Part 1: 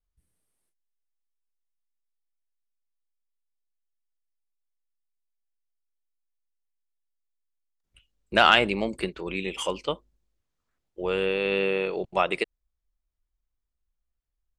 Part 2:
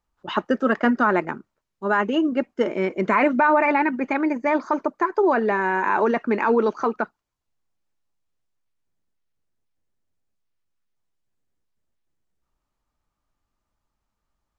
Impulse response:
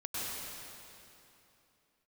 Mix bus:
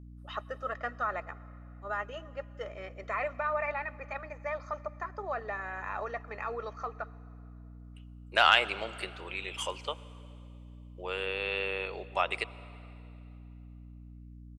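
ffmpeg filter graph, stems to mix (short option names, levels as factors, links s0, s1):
-filter_complex "[0:a]volume=0.631,asplit=2[s0][s1];[s1]volume=0.0841[s2];[1:a]aecho=1:1:1.6:0.73,volume=0.211,asplit=2[s3][s4];[s4]volume=0.0668[s5];[2:a]atrim=start_sample=2205[s6];[s2][s5]amix=inputs=2:normalize=0[s7];[s7][s6]afir=irnorm=-1:irlink=0[s8];[s0][s3][s8]amix=inputs=3:normalize=0,highpass=670,aeval=exprs='val(0)+0.00447*(sin(2*PI*60*n/s)+sin(2*PI*2*60*n/s)/2+sin(2*PI*3*60*n/s)/3+sin(2*PI*4*60*n/s)/4+sin(2*PI*5*60*n/s)/5)':c=same"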